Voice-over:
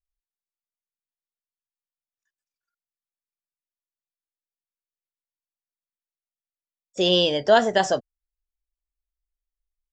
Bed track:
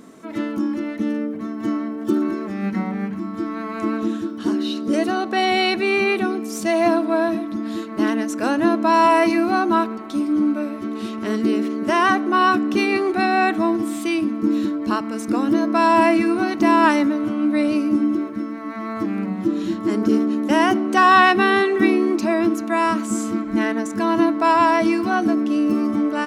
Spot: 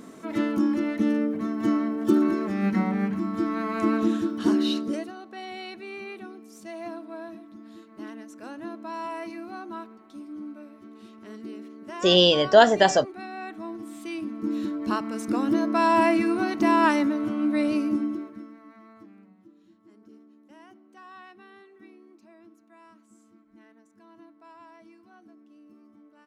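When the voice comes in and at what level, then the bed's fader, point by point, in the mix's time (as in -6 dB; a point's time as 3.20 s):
5.05 s, +2.0 dB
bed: 4.76 s -0.5 dB
5.13 s -19.5 dB
13.42 s -19.5 dB
14.91 s -5 dB
17.84 s -5 dB
19.55 s -34.5 dB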